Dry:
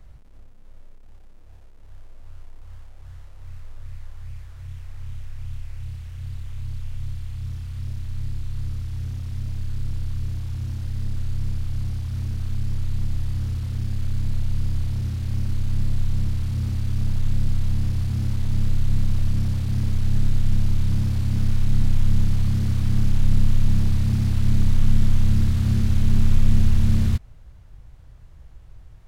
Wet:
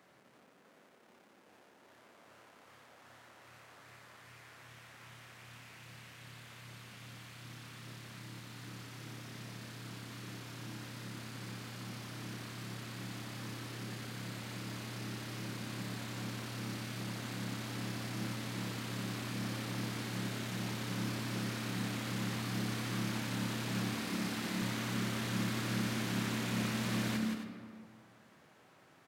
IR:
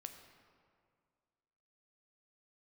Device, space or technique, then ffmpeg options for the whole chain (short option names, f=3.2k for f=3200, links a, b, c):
stadium PA: -filter_complex "[0:a]highpass=f=210:w=0.5412,highpass=f=210:w=1.3066,equalizer=f=1.7k:t=o:w=1.6:g=4.5,aecho=1:1:169.1|265.3:0.562|0.251[a];[1:a]atrim=start_sample=2205[b];[a][b]afir=irnorm=-1:irlink=0,asettb=1/sr,asplit=3[c][d][e];[c]atrim=end=23.924[f];[d]atrim=start=23.92:end=24.62,asetpts=PTS-STARTPTS,afade=t=in:d=0.004:c=qsin,afade=t=out:st=0.696:d=0.004:c=qsin,bandreject=f=60:t=h:w=6,bandreject=f=120:t=h:w=6[g];[e]atrim=start=24.616[h];[f][g]acrossfade=d=0.004:c1=hsin:c2=qsin[i];[i][h]acrossfade=d=0.004:c1=qsin:c2=hsin,volume=3dB"